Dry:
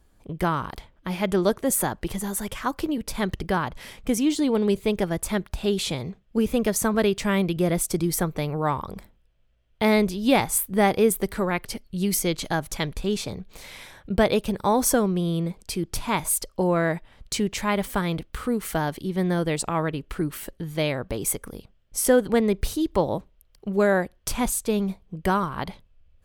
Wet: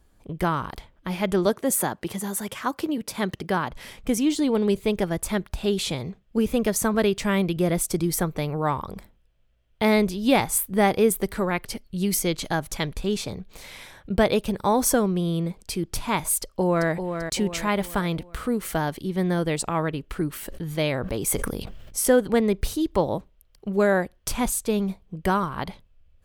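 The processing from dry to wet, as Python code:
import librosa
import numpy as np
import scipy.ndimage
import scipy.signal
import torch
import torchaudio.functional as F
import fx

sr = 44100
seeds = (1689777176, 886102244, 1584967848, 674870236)

y = fx.highpass(x, sr, hz=130.0, slope=12, at=(1.46, 3.71))
y = fx.echo_throw(y, sr, start_s=16.38, length_s=0.52, ms=390, feedback_pct=45, wet_db=-7.5)
y = fx.sustainer(y, sr, db_per_s=34.0, at=(20.37, 22.06))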